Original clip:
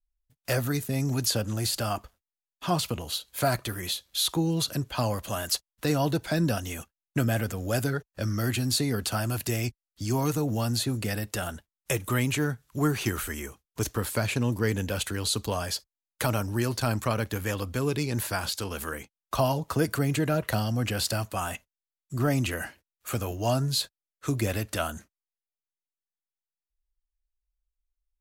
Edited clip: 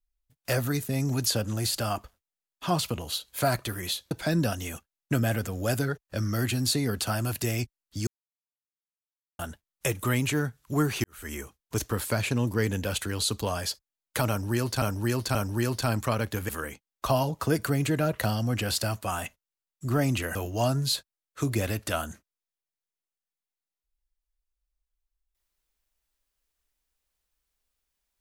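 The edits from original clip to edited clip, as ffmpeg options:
ffmpeg -i in.wav -filter_complex "[0:a]asplit=9[link_01][link_02][link_03][link_04][link_05][link_06][link_07][link_08][link_09];[link_01]atrim=end=4.112[link_10];[link_02]atrim=start=6.158:end=10.12,asetpts=PTS-STARTPTS,afade=type=out:start_time=3.958:duration=0.004:curve=hsin[link_11];[link_03]atrim=start=10.12:end=11.44,asetpts=PTS-STARTPTS,volume=0[link_12];[link_04]atrim=start=11.44:end=13.09,asetpts=PTS-STARTPTS,afade=type=in:duration=0.004:curve=hsin,afade=type=out:start_time=1.646:duration=0.004:curve=hsin[link_13];[link_05]atrim=start=13.09:end=16.872,asetpts=PTS-STARTPTS,afade=type=in:duration=0.28:curve=qua[link_14];[link_06]atrim=start=16.338:end=16.872[link_15];[link_07]atrim=start=16.338:end=17.482[link_16];[link_08]atrim=start=18.778:end=22.642[link_17];[link_09]atrim=start=23.208[link_18];[link_11][link_12][link_13][link_14]concat=n=4:v=0:a=1[link_19];[link_10][link_19]acrossfade=duration=0.004:curve1=hsin:curve2=hsin[link_20];[link_20][link_15]acrossfade=duration=0.004:curve1=hsin:curve2=hsin[link_21];[link_21][link_16]acrossfade=duration=0.004:curve1=hsin:curve2=hsin[link_22];[link_22][link_17]acrossfade=duration=0.004:curve1=hsin:curve2=hsin[link_23];[link_23][link_18]acrossfade=duration=0.004:curve1=hsin:curve2=hsin" out.wav

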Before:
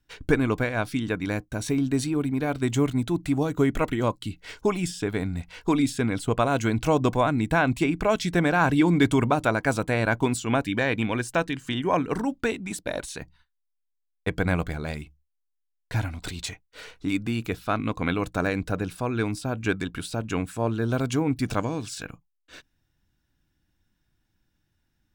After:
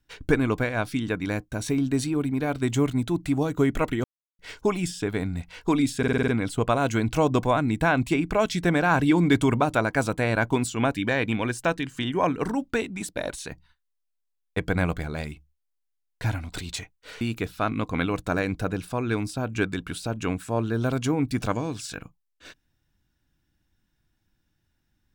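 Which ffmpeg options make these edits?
ffmpeg -i in.wav -filter_complex "[0:a]asplit=10[link_01][link_02][link_03][link_04][link_05][link_06][link_07][link_08][link_09][link_10];[link_01]atrim=end=4.04,asetpts=PTS-STARTPTS,afade=type=out:start_time=4.036:duration=0.004:curve=hsin[link_11];[link_02]atrim=start=4.04:end=4.39,asetpts=PTS-STARTPTS,volume=0[link_12];[link_03]atrim=start=4.39:end=6.032,asetpts=PTS-STARTPTS,afade=type=in:duration=0.004:curve=hsin[link_13];[link_04]atrim=start=5.978:end=6.032[link_14];[link_05]atrim=start=5.978:end=6.032[link_15];[link_06]atrim=start=5.978:end=6.032[link_16];[link_07]atrim=start=5.978:end=6.032[link_17];[link_08]atrim=start=5.978:end=6.032[link_18];[link_09]atrim=start=5.978:end=16.912[link_19];[link_10]atrim=start=17.288[link_20];[link_11][link_12][link_13]concat=n=3:v=0:a=1[link_21];[link_21][link_14]acrossfade=duration=0.004:curve1=hsin:curve2=hsin[link_22];[link_22][link_15]acrossfade=duration=0.004:curve1=hsin:curve2=hsin[link_23];[link_23][link_16]acrossfade=duration=0.004:curve1=hsin:curve2=hsin[link_24];[link_24][link_17]acrossfade=duration=0.004:curve1=hsin:curve2=hsin[link_25];[link_25][link_18]acrossfade=duration=0.004:curve1=hsin:curve2=hsin[link_26];[link_26][link_19]acrossfade=duration=0.004:curve1=hsin:curve2=hsin[link_27];[link_27][link_20]acrossfade=duration=0.004:curve1=hsin:curve2=hsin" out.wav

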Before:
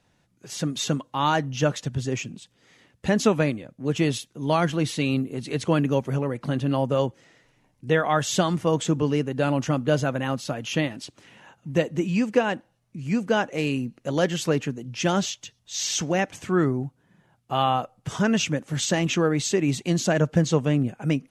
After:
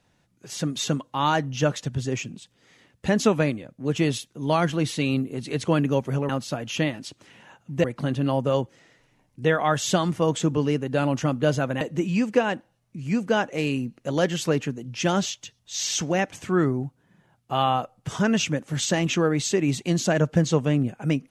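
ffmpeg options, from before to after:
ffmpeg -i in.wav -filter_complex "[0:a]asplit=4[link_01][link_02][link_03][link_04];[link_01]atrim=end=6.292[link_05];[link_02]atrim=start=10.258:end=11.812[link_06];[link_03]atrim=start=6.288:end=10.262[link_07];[link_04]atrim=start=11.808[link_08];[link_05][link_06]acrossfade=duration=0.004:curve1=hsin:curve2=hsin[link_09];[link_09][link_07]acrossfade=duration=0.004:curve1=hsin:curve2=hsin[link_10];[link_10][link_08]acrossfade=duration=0.004:curve1=hsin:curve2=hsin" out.wav

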